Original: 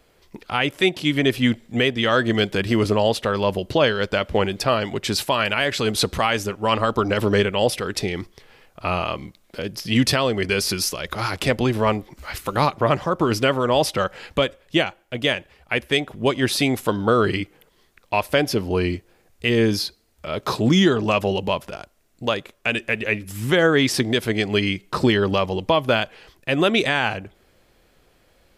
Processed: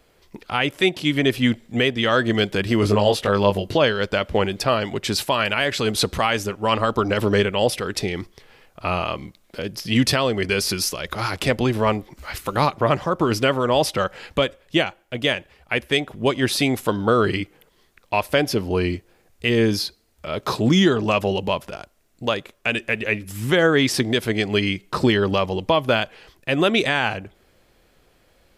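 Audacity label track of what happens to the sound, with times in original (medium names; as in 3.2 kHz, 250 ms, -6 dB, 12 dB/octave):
2.810000	3.770000	doubling 20 ms -3.5 dB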